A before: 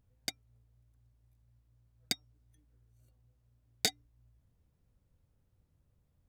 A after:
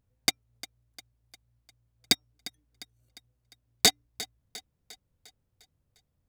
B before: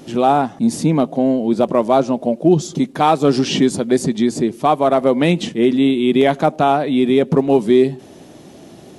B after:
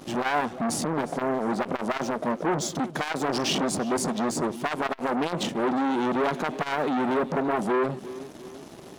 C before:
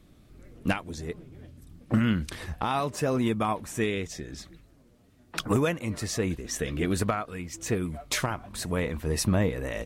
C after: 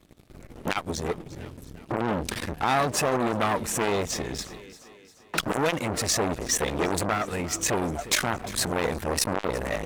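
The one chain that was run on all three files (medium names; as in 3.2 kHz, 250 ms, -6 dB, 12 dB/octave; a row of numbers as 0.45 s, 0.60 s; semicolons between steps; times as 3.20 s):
waveshaping leveller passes 3; bass shelf 110 Hz -4 dB; thinning echo 352 ms, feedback 51%, high-pass 180 Hz, level -19 dB; transformer saturation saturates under 1 kHz; normalise loudness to -27 LUFS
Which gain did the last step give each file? +4.5 dB, -11.5 dB, +0.5 dB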